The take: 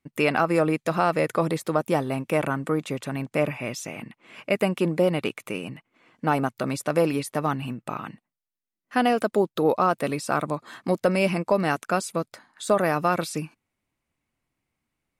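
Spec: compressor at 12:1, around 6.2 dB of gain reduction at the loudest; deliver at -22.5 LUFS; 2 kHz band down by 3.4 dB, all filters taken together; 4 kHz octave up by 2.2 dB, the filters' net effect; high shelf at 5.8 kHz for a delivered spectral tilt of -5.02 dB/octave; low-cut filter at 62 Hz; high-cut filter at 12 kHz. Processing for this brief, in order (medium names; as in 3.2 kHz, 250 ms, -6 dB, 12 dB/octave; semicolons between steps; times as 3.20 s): high-pass 62 Hz; low-pass 12 kHz; peaking EQ 2 kHz -6.5 dB; peaking EQ 4 kHz +7.5 dB; treble shelf 5.8 kHz -4.5 dB; compression 12:1, threshold -22 dBFS; trim +7 dB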